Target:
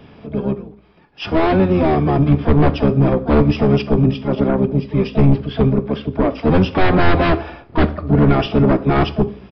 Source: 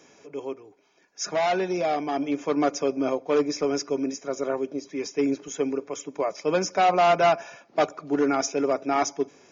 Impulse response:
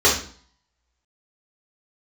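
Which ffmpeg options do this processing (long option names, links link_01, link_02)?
-filter_complex "[0:a]asplit=4[link_01][link_02][link_03][link_04];[link_02]asetrate=22050,aresample=44100,atempo=2,volume=-1dB[link_05];[link_03]asetrate=29433,aresample=44100,atempo=1.49831,volume=-16dB[link_06];[link_04]asetrate=66075,aresample=44100,atempo=0.66742,volume=-11dB[link_07];[link_01][link_05][link_06][link_07]amix=inputs=4:normalize=0,aeval=exprs='0.531*sin(PI/2*3.16*val(0)/0.531)':channel_layout=same,aemphasis=mode=reproduction:type=bsi,asplit=2[link_08][link_09];[1:a]atrim=start_sample=2205,adelay=13[link_10];[link_09][link_10]afir=irnorm=-1:irlink=0,volume=-34dB[link_11];[link_08][link_11]amix=inputs=2:normalize=0,aresample=11025,aresample=44100,volume=-7dB"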